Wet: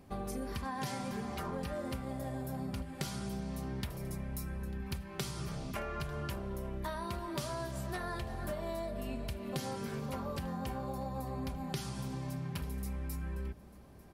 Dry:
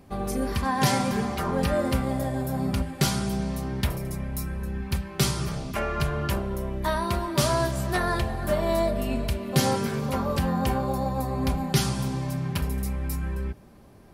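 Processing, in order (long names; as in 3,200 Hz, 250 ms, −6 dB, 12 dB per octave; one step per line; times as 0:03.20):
downward compressor, threshold −30 dBFS, peak gain reduction 13.5 dB
single-tap delay 895 ms −21.5 dB
level −5.5 dB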